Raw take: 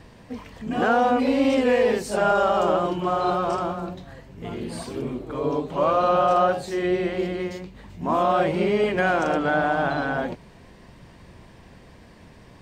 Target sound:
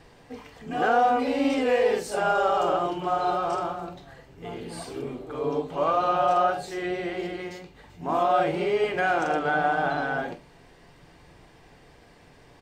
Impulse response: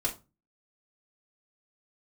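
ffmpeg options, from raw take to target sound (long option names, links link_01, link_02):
-filter_complex "[0:a]lowshelf=frequency=190:gain=-7.5,asplit=2[link_01][link_02];[link_02]adelay=46,volume=-13dB[link_03];[link_01][link_03]amix=inputs=2:normalize=0,asplit=2[link_04][link_05];[1:a]atrim=start_sample=2205,asetrate=57330,aresample=44100[link_06];[link_05][link_06]afir=irnorm=-1:irlink=0,volume=-8dB[link_07];[link_04][link_07]amix=inputs=2:normalize=0,volume=-5dB"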